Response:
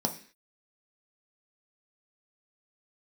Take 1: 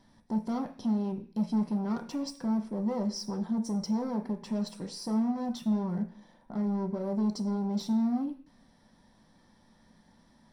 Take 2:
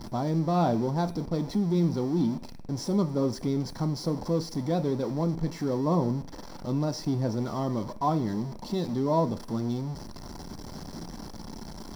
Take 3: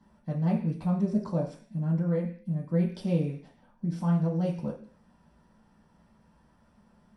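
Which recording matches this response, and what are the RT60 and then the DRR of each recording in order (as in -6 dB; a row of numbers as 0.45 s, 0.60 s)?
1; 0.45 s, 0.45 s, 0.45 s; 3.5 dB, 9.5 dB, -4.0 dB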